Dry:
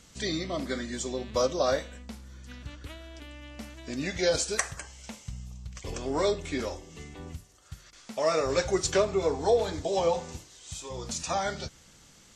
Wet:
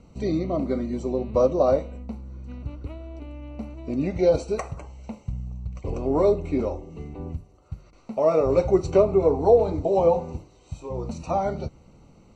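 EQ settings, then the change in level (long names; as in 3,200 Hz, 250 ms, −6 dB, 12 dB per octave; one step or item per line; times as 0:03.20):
moving average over 26 samples
+8.5 dB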